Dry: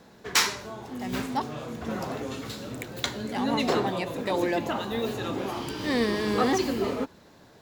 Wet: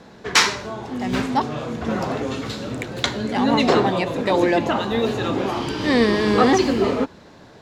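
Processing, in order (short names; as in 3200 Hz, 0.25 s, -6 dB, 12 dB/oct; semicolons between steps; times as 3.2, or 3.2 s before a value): air absorption 57 m; gain +8.5 dB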